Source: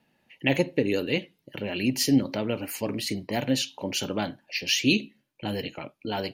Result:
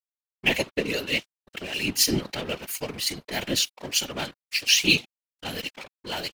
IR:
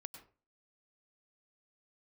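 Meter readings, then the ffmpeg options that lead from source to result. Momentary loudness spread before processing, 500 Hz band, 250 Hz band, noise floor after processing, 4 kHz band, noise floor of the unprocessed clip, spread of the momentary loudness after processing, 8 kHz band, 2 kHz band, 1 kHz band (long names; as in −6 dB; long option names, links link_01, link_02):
11 LU, −3.0 dB, −6.0 dB, below −85 dBFS, +5.5 dB, −71 dBFS, 14 LU, +6.5 dB, +4.5 dB, −1.5 dB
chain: -af "aeval=exprs='sgn(val(0))*max(abs(val(0))-0.0112,0)':channel_layout=same,tiltshelf=frequency=1400:gain=-6.5,afftfilt=real='hypot(re,im)*cos(2*PI*random(0))':imag='hypot(re,im)*sin(2*PI*random(1))':win_size=512:overlap=0.75,volume=8.5dB"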